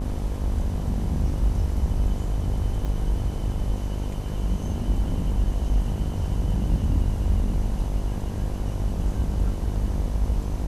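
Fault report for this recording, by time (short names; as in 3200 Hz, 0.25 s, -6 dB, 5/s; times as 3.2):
buzz 50 Hz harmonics 21 -29 dBFS
2.85 gap 3 ms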